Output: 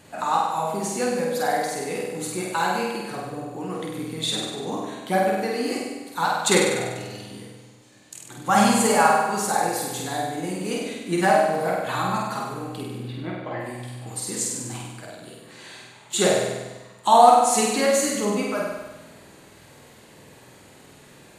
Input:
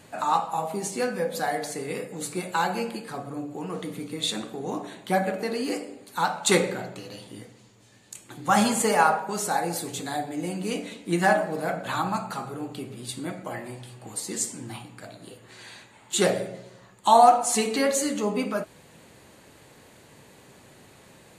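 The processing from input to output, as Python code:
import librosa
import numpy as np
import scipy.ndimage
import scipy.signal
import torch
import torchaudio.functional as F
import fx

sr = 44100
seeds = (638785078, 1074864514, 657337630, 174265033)

y = fx.lowpass(x, sr, hz=fx.line((12.97, 2600.0), (13.59, 4600.0)), slope=24, at=(12.97, 13.59), fade=0.02)
y = fx.room_flutter(y, sr, wall_m=8.4, rt60_s=1.1)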